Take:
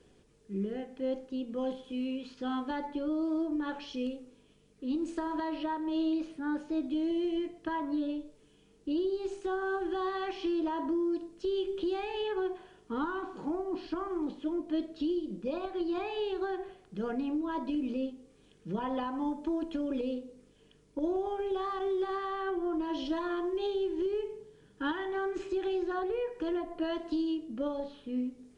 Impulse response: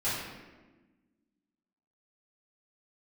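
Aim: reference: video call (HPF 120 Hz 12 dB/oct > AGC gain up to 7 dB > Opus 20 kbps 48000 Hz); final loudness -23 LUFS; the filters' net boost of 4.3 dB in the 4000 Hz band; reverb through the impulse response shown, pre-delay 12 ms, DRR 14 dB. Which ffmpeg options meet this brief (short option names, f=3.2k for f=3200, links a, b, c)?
-filter_complex "[0:a]equalizer=f=4k:t=o:g=6,asplit=2[a][b];[1:a]atrim=start_sample=2205,adelay=12[c];[b][c]afir=irnorm=-1:irlink=0,volume=-22.5dB[d];[a][d]amix=inputs=2:normalize=0,highpass=120,dynaudnorm=m=7dB,volume=6.5dB" -ar 48000 -c:a libopus -b:a 20k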